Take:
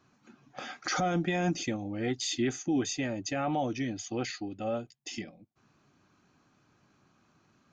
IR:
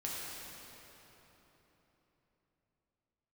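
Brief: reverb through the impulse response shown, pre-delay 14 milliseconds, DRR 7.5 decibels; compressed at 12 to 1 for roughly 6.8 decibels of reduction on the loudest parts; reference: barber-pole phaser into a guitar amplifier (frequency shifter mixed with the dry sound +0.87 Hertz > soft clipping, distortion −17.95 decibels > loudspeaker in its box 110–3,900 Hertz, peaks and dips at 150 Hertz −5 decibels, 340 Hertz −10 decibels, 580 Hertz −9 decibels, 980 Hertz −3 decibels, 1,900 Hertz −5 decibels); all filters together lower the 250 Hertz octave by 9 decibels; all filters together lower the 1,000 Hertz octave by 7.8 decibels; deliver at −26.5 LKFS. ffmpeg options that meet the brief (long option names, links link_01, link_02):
-filter_complex "[0:a]equalizer=frequency=250:width_type=o:gain=-6,equalizer=frequency=1000:width_type=o:gain=-8,acompressor=threshold=-35dB:ratio=12,asplit=2[link_01][link_02];[1:a]atrim=start_sample=2205,adelay=14[link_03];[link_02][link_03]afir=irnorm=-1:irlink=0,volume=-10dB[link_04];[link_01][link_04]amix=inputs=2:normalize=0,asplit=2[link_05][link_06];[link_06]afreqshift=0.87[link_07];[link_05][link_07]amix=inputs=2:normalize=1,asoftclip=threshold=-35dB,highpass=110,equalizer=frequency=150:width_type=q:width=4:gain=-5,equalizer=frequency=340:width_type=q:width=4:gain=-10,equalizer=frequency=580:width_type=q:width=4:gain=-9,equalizer=frequency=980:width_type=q:width=4:gain=-3,equalizer=frequency=1900:width_type=q:width=4:gain=-5,lowpass=frequency=3900:width=0.5412,lowpass=frequency=3900:width=1.3066,volume=22.5dB"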